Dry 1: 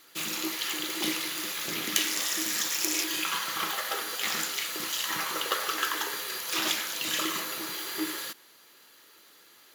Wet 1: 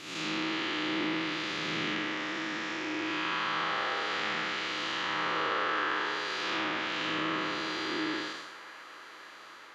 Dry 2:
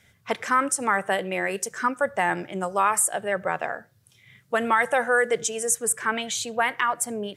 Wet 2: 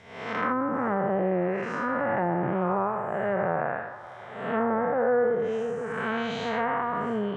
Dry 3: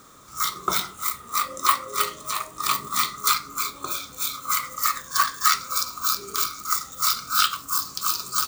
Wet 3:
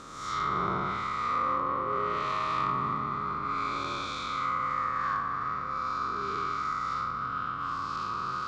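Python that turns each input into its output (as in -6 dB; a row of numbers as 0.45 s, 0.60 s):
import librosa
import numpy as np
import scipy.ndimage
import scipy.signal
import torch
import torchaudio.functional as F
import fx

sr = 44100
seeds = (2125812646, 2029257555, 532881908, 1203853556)

p1 = fx.spec_blur(x, sr, span_ms=301.0)
p2 = fx.dynamic_eq(p1, sr, hz=120.0, q=1.2, threshold_db=-54.0, ratio=4.0, max_db=5)
p3 = fx.rider(p2, sr, range_db=4, speed_s=2.0)
p4 = p2 + (p3 * librosa.db_to_amplitude(-1.5))
p5 = fx.env_lowpass_down(p4, sr, base_hz=840.0, full_db=-19.5)
p6 = fx.air_absorb(p5, sr, metres=93.0)
y = fx.echo_wet_bandpass(p6, sr, ms=538, feedback_pct=81, hz=1200.0, wet_db=-17)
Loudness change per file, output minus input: -2.5 LU, -3.0 LU, -7.0 LU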